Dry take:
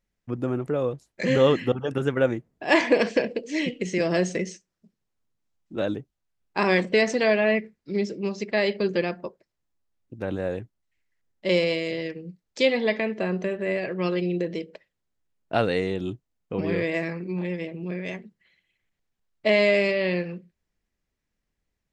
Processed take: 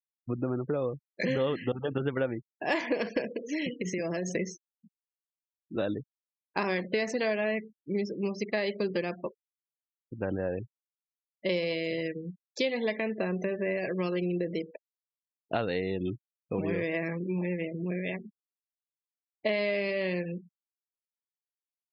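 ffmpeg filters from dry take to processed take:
-filter_complex "[0:a]asettb=1/sr,asplit=3[s0][s1][s2];[s0]atrim=end=3.304[s3];[s1]atrim=start=3.3:end=4.35,asetpts=PTS-STARTPTS,afade=t=in:d=0.004:c=qsin,afade=t=out:st=1.046:d=0.004:c=qsin,acompressor=threshold=0.0501:ratio=20:attack=3.2:release=140:knee=1:detection=peak[s4];[s2]atrim=start=4.346[s5];[s3][s4]acrossfade=d=0.004:c1=hsin:c2=qsin[s6];[s6][s5]acrossfade=d=0.004:c1=qsin:c2=hsin,afftfilt=real='re*gte(hypot(re,im),0.0126)':imag='im*gte(hypot(re,im),0.0126)':win_size=1024:overlap=0.75,acompressor=threshold=0.0447:ratio=4"

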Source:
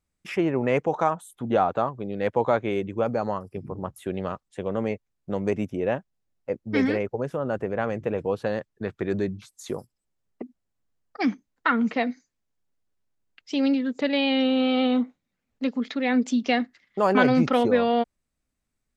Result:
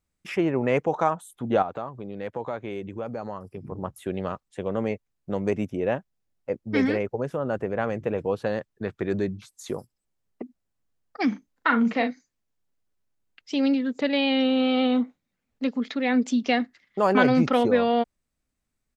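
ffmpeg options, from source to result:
-filter_complex "[0:a]asettb=1/sr,asplit=3[s0][s1][s2];[s0]atrim=end=1.624[s3];[s1]atrim=start=1.62:end=3.72,asetpts=PTS-STARTPTS,afade=t=in:d=0.004:c=qsin,afade=t=out:st=2.096:d=0.004:c=qsin,acompressor=threshold=0.02:ratio=2:attack=3.2:release=140:knee=1:detection=peak[s4];[s2]atrim=start=3.716[s5];[s3][s4]acrossfade=d=0.004:c1=hsin:c2=qsin[s6];[s6][s5]acrossfade=d=0.004:c1=qsin:c2=hsin,asplit=3[s7][s8][s9];[s7]afade=t=out:st=11.31:d=0.02[s10];[s8]asplit=2[s11][s12];[s12]adelay=39,volume=0.447[s13];[s11][s13]amix=inputs=2:normalize=0,afade=t=in:st=11.31:d=0.02,afade=t=out:st=12.1:d=0.02[s14];[s9]afade=t=in:st=12.1:d=0.02[s15];[s10][s14][s15]amix=inputs=3:normalize=0"

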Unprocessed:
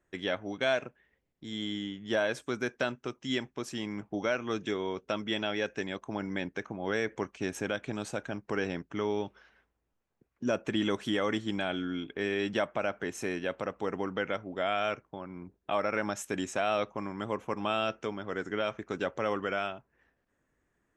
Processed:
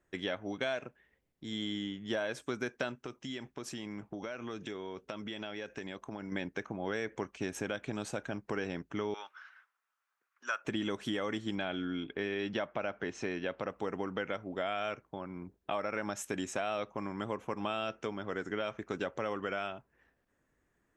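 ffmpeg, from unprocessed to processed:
-filter_complex "[0:a]asettb=1/sr,asplit=3[s0][s1][s2];[s0]atrim=end=2.954[s3];[s1]atrim=start=2.95:end=6.32,asetpts=PTS-STARTPTS,afade=t=in:d=0.004:c=qsin,afade=t=out:st=3.366:d=0.004:c=qsin,acompressor=threshold=0.0141:ratio=5:attack=3.2:release=140:knee=1:detection=peak[s4];[s2]atrim=start=6.316[s5];[s3][s4]acrossfade=d=0.004:c1=hsin:c2=qsin[s6];[s6][s5]acrossfade=d=0.004:c1=qsin:c2=hsin,asettb=1/sr,asplit=3[s7][s8][s9];[s7]atrim=end=9.144[s10];[s8]atrim=start=9.14:end=10.65,asetpts=PTS-STARTPTS,afade=t=in:d=0.004:c=qsin,afade=t=out:st=1.506:d=0.004:c=qsin,highpass=f=1300:t=q:w=3.3[s11];[s9]atrim=start=10.646[s12];[s10][s11]acrossfade=d=0.004:c1=hsin:c2=qsin[s13];[s13][s12]acrossfade=d=0.004:c1=qsin:c2=hsin,asettb=1/sr,asplit=3[s14][s15][s16];[s14]atrim=end=11.554[s17];[s15]atrim=start=11.55:end=13.68,asetpts=PTS-STARTPTS,afade=t=in:d=0.004:c=qsin,afade=t=out:st=2.126:d=0.004:c=qsin,lowpass=f=5700:w=0.5412,lowpass=f=5700:w=1.3066[s18];[s16]atrim=start=13.676[s19];[s17][s18]acrossfade=d=0.004:c1=hsin:c2=qsin[s20];[s20][s19]acrossfade=d=0.004:c1=qsin:c2=hsin,acompressor=threshold=0.0251:ratio=3"

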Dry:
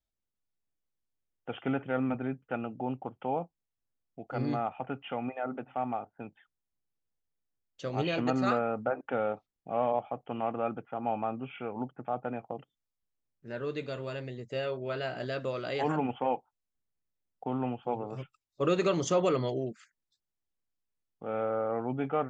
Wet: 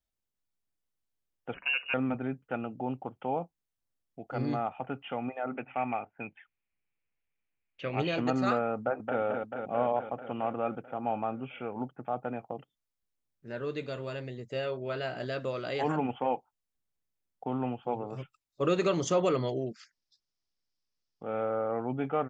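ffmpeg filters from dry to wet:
-filter_complex "[0:a]asettb=1/sr,asplit=3[s0][s1][s2];[s0]atrim=end=1.544[s3];[s1]atrim=start=1.54:end=1.94,asetpts=PTS-STARTPTS,afade=t=in:d=0.004:c=qsin,afade=t=out:st=0.396:d=0.004:c=qsin,lowpass=f=2600:t=q:w=0.5098,lowpass=f=2600:t=q:w=0.6013,lowpass=f=2600:t=q:w=0.9,lowpass=f=2600:t=q:w=2.563,afreqshift=-3000[s4];[s2]atrim=start=1.936[s5];[s3][s4]acrossfade=d=0.004:c1=hsin:c2=qsin[s6];[s6][s5]acrossfade=d=0.004:c1=qsin:c2=hsin,asettb=1/sr,asplit=3[s7][s8][s9];[s7]atrim=end=5.474[s10];[s8]atrim=start=5.47:end=8,asetpts=PTS-STARTPTS,afade=t=in:d=0.004:c=qsin,afade=t=out:st=2.526:d=0.004:c=qsin,lowpass=f=2400:t=q:w=5.5[s11];[s9]atrim=start=7.996[s12];[s10][s11]acrossfade=d=0.004:c1=hsin:c2=qsin[s13];[s13][s12]acrossfade=d=0.004:c1=qsin:c2=hsin,asplit=2[s14][s15];[s15]afade=t=in:st=8.77:d=0.01,afade=t=out:st=9.21:d=0.01,aecho=0:1:220|440|660|880|1100|1320|1540|1760|1980|2200|2420|2640:0.595662|0.446747|0.33506|0.251295|0.188471|0.141353|0.106015|0.0795113|0.0596335|0.0447251|0.0335438|0.0251579[s16];[s14][s16]amix=inputs=2:normalize=0,asettb=1/sr,asplit=3[s17][s18][s19];[s17]atrim=end=19.714[s20];[s18]atrim=start=19.71:end=21.23,asetpts=PTS-STARTPTS,afade=t=in:d=0.004:c=qsin,afade=t=out:st=1.516:d=0.004:c=qsin,lowpass=f=5200:t=q:w=4.9[s21];[s19]atrim=start=21.226[s22];[s20][s21]acrossfade=d=0.004:c1=hsin:c2=qsin[s23];[s23][s22]acrossfade=d=0.004:c1=qsin:c2=hsin"

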